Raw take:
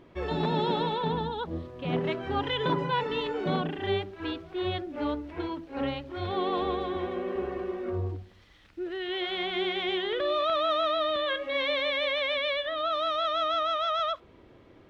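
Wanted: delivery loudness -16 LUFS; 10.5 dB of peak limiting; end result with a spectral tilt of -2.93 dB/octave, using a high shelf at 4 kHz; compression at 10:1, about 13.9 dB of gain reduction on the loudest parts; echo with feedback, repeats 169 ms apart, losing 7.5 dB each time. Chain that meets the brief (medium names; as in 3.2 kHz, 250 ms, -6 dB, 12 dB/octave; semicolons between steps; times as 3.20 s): treble shelf 4 kHz +7 dB; compression 10:1, threshold -37 dBFS; peak limiter -38.5 dBFS; feedback delay 169 ms, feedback 42%, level -7.5 dB; trim +29 dB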